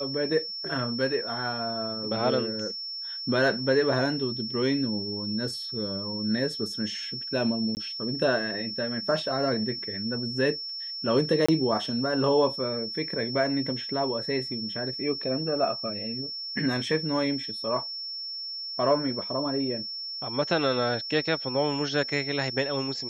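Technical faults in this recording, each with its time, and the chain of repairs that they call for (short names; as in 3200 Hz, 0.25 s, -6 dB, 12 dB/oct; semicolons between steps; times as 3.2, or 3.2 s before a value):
tone 5400 Hz -33 dBFS
7.75–7.77 gap 19 ms
11.46–11.48 gap 25 ms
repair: notch 5400 Hz, Q 30; interpolate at 7.75, 19 ms; interpolate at 11.46, 25 ms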